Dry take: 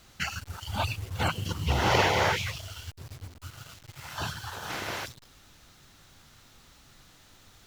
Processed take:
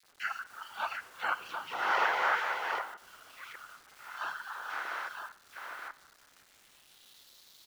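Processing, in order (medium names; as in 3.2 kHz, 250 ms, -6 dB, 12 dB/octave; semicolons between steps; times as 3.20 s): chunks repeated in reverse 588 ms, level -5.5 dB; high-pass 270 Hz 12 dB/octave; 2.78–3.51 s: compression, threshold -38 dBFS, peak gain reduction 10 dB; band-pass sweep 1.4 kHz -> 4.2 kHz, 6.05–7.31 s; bit crusher 10-bit; bands offset in time highs, lows 30 ms, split 2.2 kHz; Schroeder reverb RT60 0.62 s, combs from 31 ms, DRR 15.5 dB; trim +4 dB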